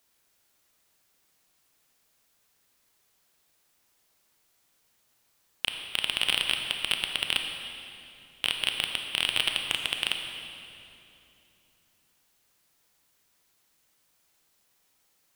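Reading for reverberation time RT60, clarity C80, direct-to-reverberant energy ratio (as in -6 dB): 2.9 s, 5.0 dB, 3.5 dB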